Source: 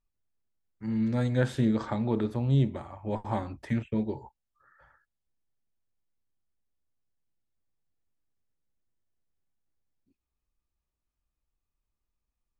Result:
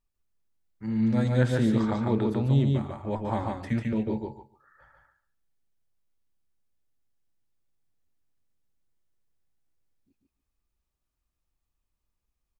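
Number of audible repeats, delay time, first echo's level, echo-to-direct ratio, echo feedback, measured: 3, 0.145 s, -3.0 dB, -3.0 dB, 16%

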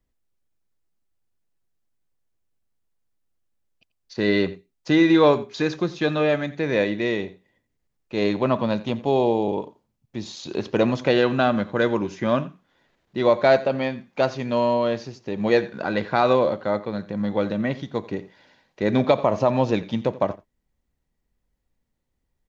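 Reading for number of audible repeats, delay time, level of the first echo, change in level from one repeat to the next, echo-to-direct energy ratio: 1, 87 ms, -19.0 dB, no steady repeat, -19.0 dB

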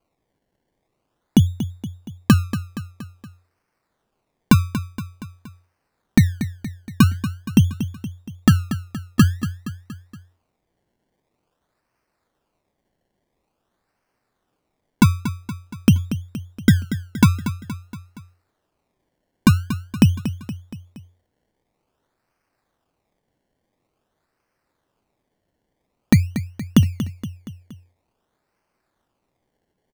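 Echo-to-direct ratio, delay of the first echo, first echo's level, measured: -10.5 dB, 0.235 s, -12.0 dB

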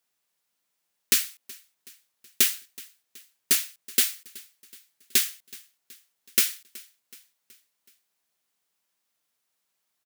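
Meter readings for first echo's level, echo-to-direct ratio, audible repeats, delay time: -22.0 dB, -20.5 dB, 3, 0.374 s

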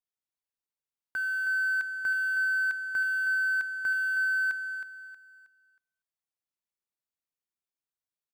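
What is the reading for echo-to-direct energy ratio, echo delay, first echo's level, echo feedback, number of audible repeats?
-8.0 dB, 0.317 s, -8.5 dB, 33%, 3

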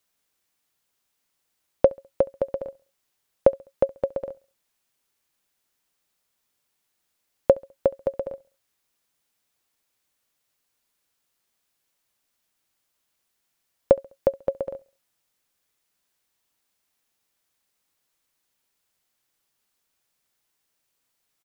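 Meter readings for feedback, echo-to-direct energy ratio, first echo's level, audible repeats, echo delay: 40%, -23.5 dB, -24.0 dB, 2, 68 ms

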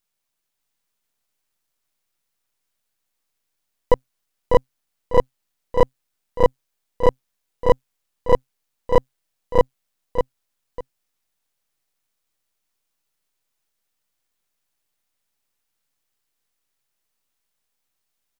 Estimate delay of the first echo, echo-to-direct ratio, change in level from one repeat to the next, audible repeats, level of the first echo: 0.598 s, -5.0 dB, -12.0 dB, 2, -5.5 dB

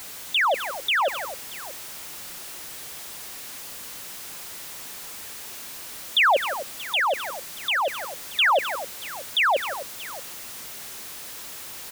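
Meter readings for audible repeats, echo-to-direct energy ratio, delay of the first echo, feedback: 3, -9.5 dB, 0.168 s, no steady repeat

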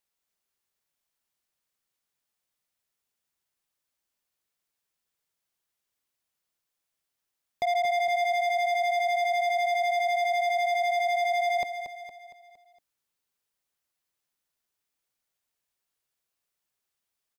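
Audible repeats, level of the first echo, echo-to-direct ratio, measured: 5, -9.0 dB, -8.0 dB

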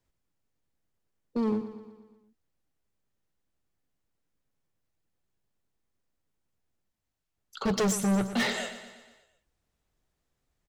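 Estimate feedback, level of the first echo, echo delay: 56%, -12.0 dB, 0.119 s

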